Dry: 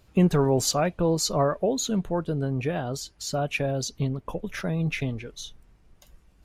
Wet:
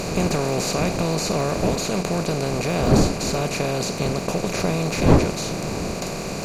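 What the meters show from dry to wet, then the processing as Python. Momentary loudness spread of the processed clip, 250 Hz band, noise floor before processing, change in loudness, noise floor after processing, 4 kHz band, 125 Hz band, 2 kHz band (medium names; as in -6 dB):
8 LU, +4.5 dB, -59 dBFS, +4.0 dB, -29 dBFS, +5.0 dB, +4.5 dB, +6.0 dB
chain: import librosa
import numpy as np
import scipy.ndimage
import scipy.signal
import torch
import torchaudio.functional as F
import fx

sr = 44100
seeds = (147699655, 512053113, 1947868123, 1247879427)

y = fx.bin_compress(x, sr, power=0.2)
y = fx.dmg_wind(y, sr, seeds[0], corner_hz=340.0, level_db=-19.0)
y = fx.dmg_crackle(y, sr, seeds[1], per_s=18.0, level_db=-25.0)
y = y * 10.0 ** (-6.5 / 20.0)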